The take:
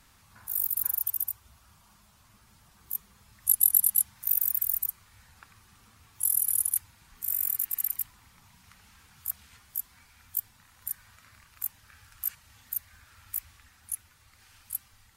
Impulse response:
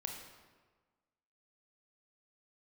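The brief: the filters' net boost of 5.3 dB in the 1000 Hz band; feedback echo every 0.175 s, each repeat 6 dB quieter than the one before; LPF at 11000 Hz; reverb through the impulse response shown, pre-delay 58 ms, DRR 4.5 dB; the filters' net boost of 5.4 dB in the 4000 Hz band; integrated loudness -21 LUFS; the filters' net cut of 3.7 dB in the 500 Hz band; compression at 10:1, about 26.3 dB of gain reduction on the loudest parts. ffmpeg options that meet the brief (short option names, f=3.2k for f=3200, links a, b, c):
-filter_complex "[0:a]lowpass=11k,equalizer=f=500:t=o:g=-8.5,equalizer=f=1k:t=o:g=8,equalizer=f=4k:t=o:g=6.5,acompressor=threshold=-47dB:ratio=10,aecho=1:1:175|350|525|700|875|1050:0.501|0.251|0.125|0.0626|0.0313|0.0157,asplit=2[a][b];[1:a]atrim=start_sample=2205,adelay=58[c];[b][c]afir=irnorm=-1:irlink=0,volume=-3.5dB[d];[a][d]amix=inputs=2:normalize=0,volume=28dB"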